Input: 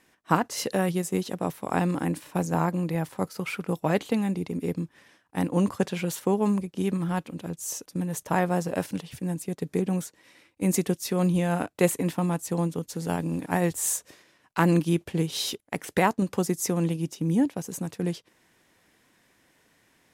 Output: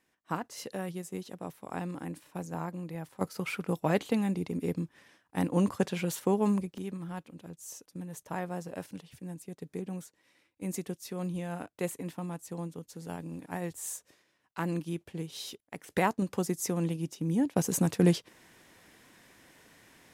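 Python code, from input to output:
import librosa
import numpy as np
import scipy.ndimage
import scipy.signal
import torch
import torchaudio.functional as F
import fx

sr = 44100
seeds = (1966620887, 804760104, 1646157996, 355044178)

y = fx.gain(x, sr, db=fx.steps((0.0, -11.5), (3.21, -3.0), (6.78, -11.5), (15.9, -5.0), (17.56, 5.5)))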